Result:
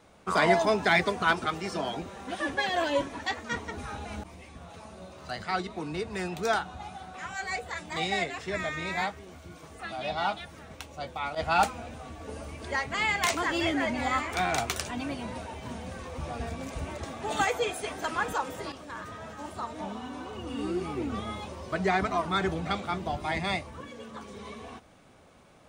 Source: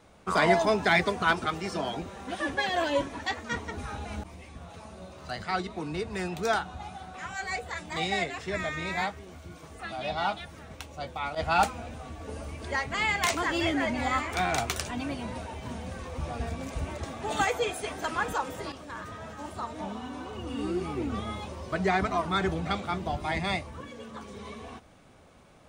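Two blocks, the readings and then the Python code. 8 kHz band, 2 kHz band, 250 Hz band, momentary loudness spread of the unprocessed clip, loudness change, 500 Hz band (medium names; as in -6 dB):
0.0 dB, 0.0 dB, -0.5 dB, 17 LU, 0.0 dB, 0.0 dB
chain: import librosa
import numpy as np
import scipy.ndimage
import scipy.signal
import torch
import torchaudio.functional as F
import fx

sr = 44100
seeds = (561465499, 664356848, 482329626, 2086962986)

y = fx.low_shelf(x, sr, hz=100.0, db=-5.0)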